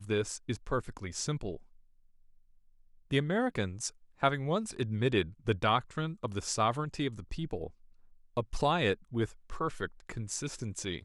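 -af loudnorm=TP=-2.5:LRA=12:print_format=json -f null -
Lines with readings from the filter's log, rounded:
"input_i" : "-33.8",
"input_tp" : "-12.0",
"input_lra" : "4.6",
"input_thresh" : "-43.9",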